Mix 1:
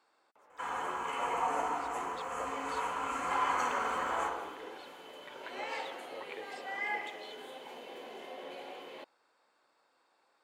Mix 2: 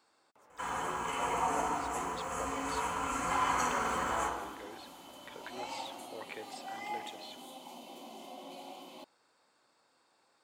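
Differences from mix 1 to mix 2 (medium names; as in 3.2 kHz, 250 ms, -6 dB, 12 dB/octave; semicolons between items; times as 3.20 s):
second sound: add static phaser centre 450 Hz, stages 6; master: add tone controls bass +11 dB, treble +8 dB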